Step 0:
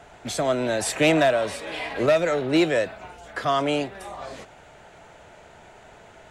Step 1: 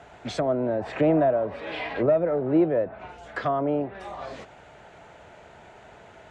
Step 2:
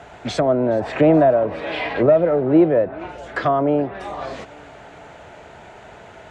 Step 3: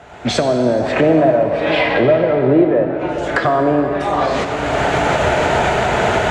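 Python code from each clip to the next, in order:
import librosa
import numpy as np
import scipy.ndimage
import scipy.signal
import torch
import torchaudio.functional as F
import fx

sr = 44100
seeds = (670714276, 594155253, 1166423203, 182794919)

y1 = scipy.signal.sosfilt(scipy.signal.butter(2, 42.0, 'highpass', fs=sr, output='sos'), x)
y1 = fx.high_shelf(y1, sr, hz=6600.0, db=-11.0)
y1 = fx.env_lowpass_down(y1, sr, base_hz=800.0, full_db=-21.0)
y2 = fx.echo_feedback(y1, sr, ms=422, feedback_pct=56, wet_db=-23.5)
y2 = y2 * librosa.db_to_amplitude(7.0)
y3 = fx.recorder_agc(y2, sr, target_db=-7.5, rise_db_per_s=26.0, max_gain_db=30)
y3 = fx.rev_plate(y3, sr, seeds[0], rt60_s=3.7, hf_ratio=0.6, predelay_ms=0, drr_db=5.0)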